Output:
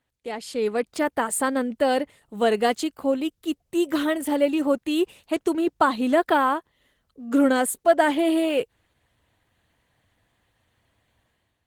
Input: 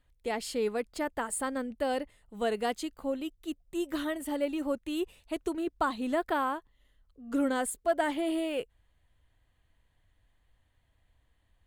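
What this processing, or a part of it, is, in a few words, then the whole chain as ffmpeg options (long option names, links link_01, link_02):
video call: -af "highpass=120,dynaudnorm=framelen=450:gausssize=3:maxgain=10dB" -ar 48000 -c:a libopus -b:a 16k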